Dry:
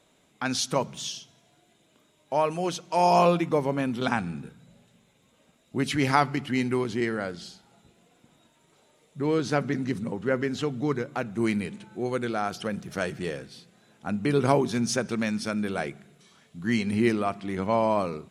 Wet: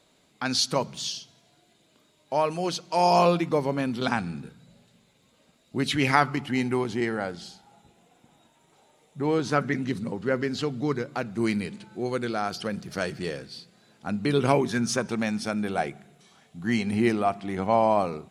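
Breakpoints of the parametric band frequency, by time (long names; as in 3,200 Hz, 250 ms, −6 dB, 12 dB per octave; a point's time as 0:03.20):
parametric band +9.5 dB 0.28 octaves
0:05.84 4,500 Hz
0:06.45 810 Hz
0:09.42 810 Hz
0:10.00 4,600 Hz
0:14.19 4,600 Hz
0:15.18 760 Hz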